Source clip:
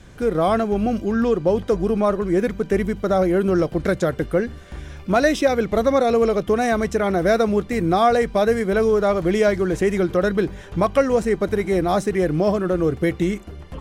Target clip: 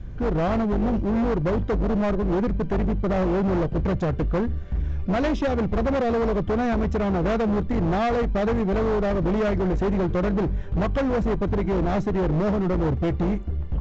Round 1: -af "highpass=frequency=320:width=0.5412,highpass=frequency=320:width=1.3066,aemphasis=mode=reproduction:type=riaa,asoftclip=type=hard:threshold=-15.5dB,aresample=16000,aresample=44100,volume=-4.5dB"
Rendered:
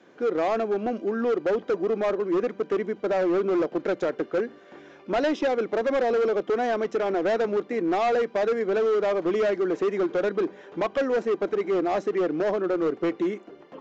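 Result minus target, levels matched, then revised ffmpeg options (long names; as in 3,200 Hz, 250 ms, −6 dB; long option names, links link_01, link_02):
250 Hz band −4.0 dB
-af "aemphasis=mode=reproduction:type=riaa,asoftclip=type=hard:threshold=-15.5dB,aresample=16000,aresample=44100,volume=-4.5dB"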